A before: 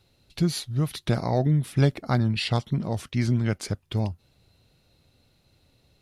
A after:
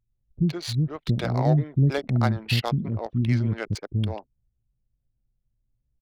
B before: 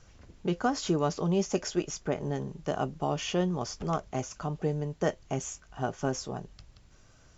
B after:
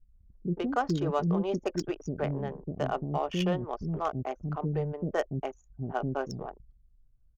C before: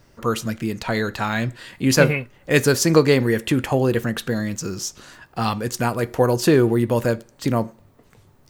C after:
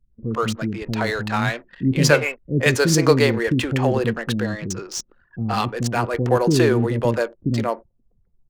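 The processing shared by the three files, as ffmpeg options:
-filter_complex "[0:a]adynamicsmooth=sensitivity=6:basefreq=3.1k,anlmdn=1.58,acrossover=split=350[a][b];[b]adelay=120[c];[a][c]amix=inputs=2:normalize=0,volume=1.5dB"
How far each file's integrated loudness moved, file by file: +1.0, -0.5, 0.0 LU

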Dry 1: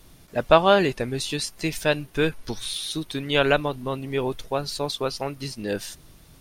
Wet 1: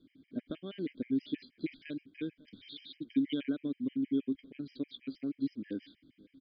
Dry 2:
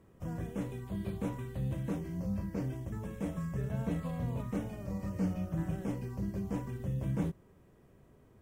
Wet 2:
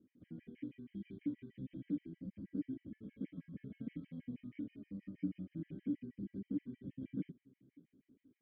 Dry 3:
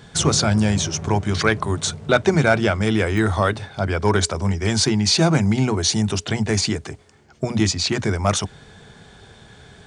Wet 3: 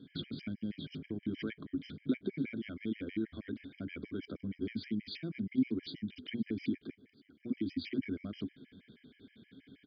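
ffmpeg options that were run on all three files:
-filter_complex "[0:a]tiltshelf=f=1.2k:g=4.5,bandreject=f=2.7k:w=13,asplit=2[a][b];[b]alimiter=limit=-11.5dB:level=0:latency=1:release=93,volume=0.5dB[c];[a][c]amix=inputs=2:normalize=0,acompressor=threshold=-14dB:ratio=6,aeval=exprs='0.631*(cos(1*acos(clip(val(0)/0.631,-1,1)))-cos(1*PI/2))+0.0447*(cos(3*acos(clip(val(0)/0.631,-1,1)))-cos(3*PI/2))+0.00794*(cos(5*acos(clip(val(0)/0.631,-1,1)))-cos(5*PI/2))':c=same,asplit=3[d][e][f];[d]bandpass=f=270:t=q:w=8,volume=0dB[g];[e]bandpass=f=2.29k:t=q:w=8,volume=-6dB[h];[f]bandpass=f=3.01k:t=q:w=8,volume=-9dB[i];[g][h][i]amix=inputs=3:normalize=0,asplit=2[j][k];[k]aecho=0:1:548:0.0631[l];[j][l]amix=inputs=2:normalize=0,aresample=11025,aresample=44100,afftfilt=real='re*gt(sin(2*PI*6.3*pts/sr)*(1-2*mod(floor(b*sr/1024/1600),2)),0)':imag='im*gt(sin(2*PI*6.3*pts/sr)*(1-2*mod(floor(b*sr/1024/1600),2)),0)':win_size=1024:overlap=0.75,volume=-2dB"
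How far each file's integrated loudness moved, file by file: -13.0, -8.5, -19.5 LU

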